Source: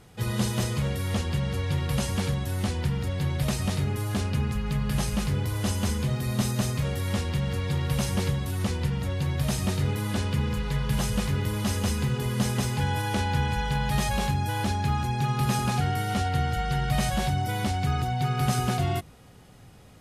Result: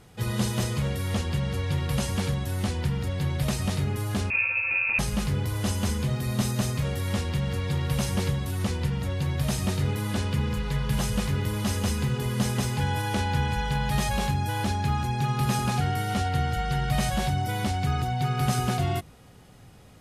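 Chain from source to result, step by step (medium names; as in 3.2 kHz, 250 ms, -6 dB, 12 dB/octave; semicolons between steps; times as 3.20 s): 4.30–4.99 s: frequency inversion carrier 2.6 kHz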